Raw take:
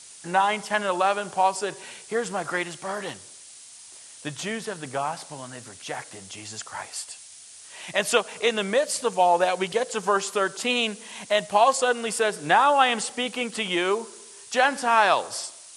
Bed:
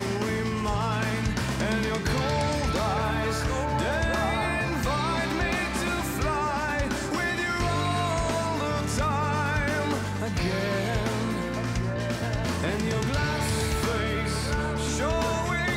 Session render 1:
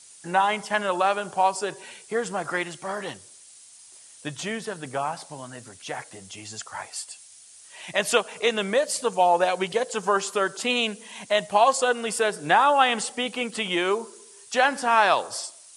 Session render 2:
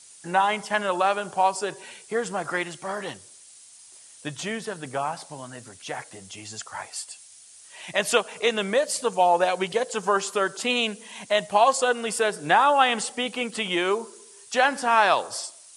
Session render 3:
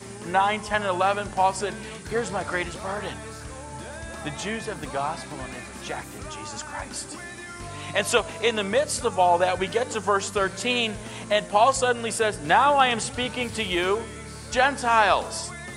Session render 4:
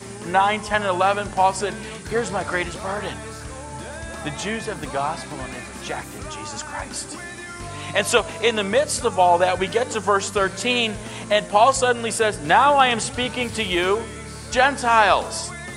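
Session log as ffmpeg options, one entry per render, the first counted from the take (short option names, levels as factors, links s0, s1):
-af "afftdn=nr=6:nf=-46"
-af anull
-filter_complex "[1:a]volume=0.266[s0];[0:a][s0]amix=inputs=2:normalize=0"
-af "volume=1.5,alimiter=limit=0.794:level=0:latency=1"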